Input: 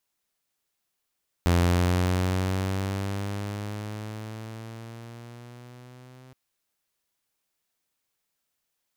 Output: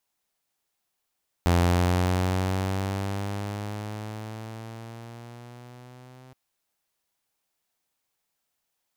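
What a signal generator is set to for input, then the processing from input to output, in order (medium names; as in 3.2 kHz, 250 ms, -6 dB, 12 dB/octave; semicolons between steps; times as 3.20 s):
gliding synth tone saw, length 4.87 s, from 86.3 Hz, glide +7 st, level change -29.5 dB, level -15.5 dB
peaking EQ 790 Hz +4.5 dB 0.64 oct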